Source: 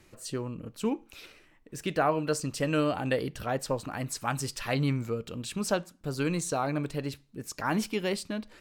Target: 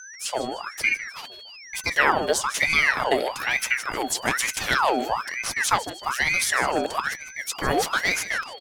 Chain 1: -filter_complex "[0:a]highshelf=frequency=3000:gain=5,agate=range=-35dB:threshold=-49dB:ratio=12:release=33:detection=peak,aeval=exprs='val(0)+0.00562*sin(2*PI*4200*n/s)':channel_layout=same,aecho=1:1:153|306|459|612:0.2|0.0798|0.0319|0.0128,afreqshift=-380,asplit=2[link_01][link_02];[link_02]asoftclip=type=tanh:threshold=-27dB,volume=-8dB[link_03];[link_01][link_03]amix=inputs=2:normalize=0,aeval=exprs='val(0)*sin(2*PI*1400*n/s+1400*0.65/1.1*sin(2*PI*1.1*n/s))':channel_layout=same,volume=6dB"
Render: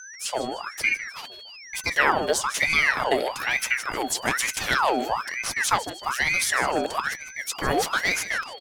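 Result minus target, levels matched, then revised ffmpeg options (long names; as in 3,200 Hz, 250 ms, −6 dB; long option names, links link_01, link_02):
soft clipping: distortion +8 dB
-filter_complex "[0:a]highshelf=frequency=3000:gain=5,agate=range=-35dB:threshold=-49dB:ratio=12:release=33:detection=peak,aeval=exprs='val(0)+0.00562*sin(2*PI*4200*n/s)':channel_layout=same,aecho=1:1:153|306|459|612:0.2|0.0798|0.0319|0.0128,afreqshift=-380,asplit=2[link_01][link_02];[link_02]asoftclip=type=tanh:threshold=-19.5dB,volume=-8dB[link_03];[link_01][link_03]amix=inputs=2:normalize=0,aeval=exprs='val(0)*sin(2*PI*1400*n/s+1400*0.65/1.1*sin(2*PI*1.1*n/s))':channel_layout=same,volume=6dB"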